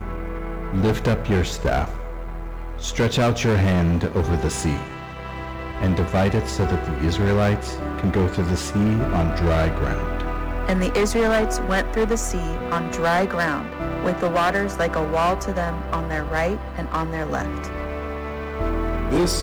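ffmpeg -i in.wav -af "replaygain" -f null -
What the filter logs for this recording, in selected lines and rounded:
track_gain = +3.5 dB
track_peak = 0.121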